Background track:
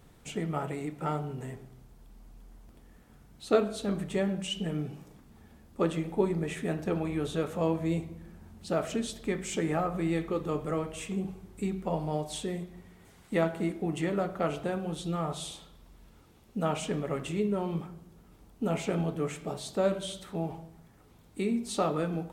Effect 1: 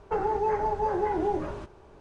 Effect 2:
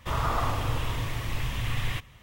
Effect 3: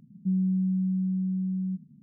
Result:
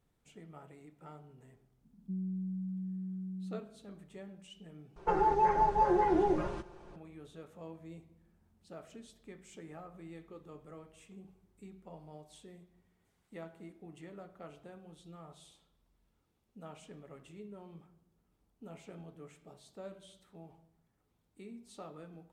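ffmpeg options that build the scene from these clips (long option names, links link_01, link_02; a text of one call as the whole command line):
ffmpeg -i bed.wav -i cue0.wav -i cue1.wav -i cue2.wav -filter_complex "[0:a]volume=-19.5dB[link_01];[3:a]highpass=320[link_02];[1:a]aecho=1:1:5.7:0.66[link_03];[link_01]asplit=2[link_04][link_05];[link_04]atrim=end=4.964[link_06];[link_03]atrim=end=2,asetpts=PTS-STARTPTS,volume=-2dB[link_07];[link_05]atrim=start=6.956[link_08];[link_02]atrim=end=2.02,asetpts=PTS-STARTPTS,volume=-2dB,afade=type=in:duration=0.004:curve=hsin,afade=type=out:start_time=2.016:duration=0.004:curve=hsin,adelay=1830[link_09];[link_06][link_07]acrossfade=duration=0.004:curve1=hsin:curve2=hsin[link_10];[link_10][link_08]acrossfade=duration=0.004:curve1=hsin:curve2=hsin[link_11];[link_11][link_09]amix=inputs=2:normalize=0" out.wav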